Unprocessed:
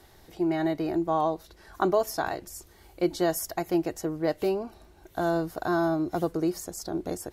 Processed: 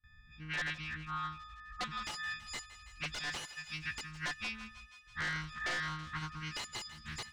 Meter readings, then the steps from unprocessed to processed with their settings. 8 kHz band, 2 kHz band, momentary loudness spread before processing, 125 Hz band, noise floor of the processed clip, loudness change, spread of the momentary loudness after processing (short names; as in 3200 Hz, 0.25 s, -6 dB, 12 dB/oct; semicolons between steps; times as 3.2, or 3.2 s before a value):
-8.5 dB, +2.0 dB, 9 LU, -8.5 dB, -59 dBFS, -11.0 dB, 11 LU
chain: frequency quantiser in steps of 6 st; Chebyshev band-stop 240–1500 Hz, order 3; gate with hold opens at -39 dBFS; low-pass opened by the level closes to 840 Hz, open at -21 dBFS; passive tone stack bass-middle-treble 10-0-10; compressor 16:1, threshold -40 dBFS, peak gain reduction 24 dB; wrapped overs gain 37.5 dB; air absorption 120 m; thinning echo 0.164 s, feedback 76%, high-pass 720 Hz, level -14 dB; Doppler distortion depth 0.38 ms; gain +10 dB